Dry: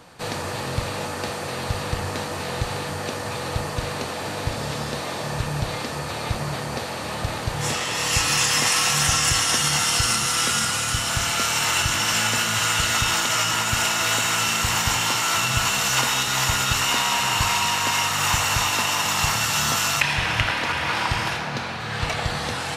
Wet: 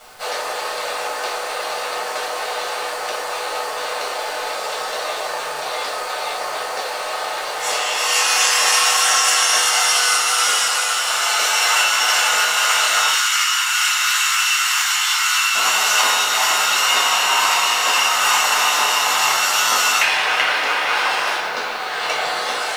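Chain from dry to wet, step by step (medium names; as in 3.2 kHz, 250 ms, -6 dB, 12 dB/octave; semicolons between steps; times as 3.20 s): high-pass 470 Hz 24 dB/octave, from 13.09 s 1.2 kHz, from 15.55 s 370 Hz; word length cut 8-bit, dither none; reverberation RT60 0.35 s, pre-delay 8 ms, DRR -3 dB; trim -1 dB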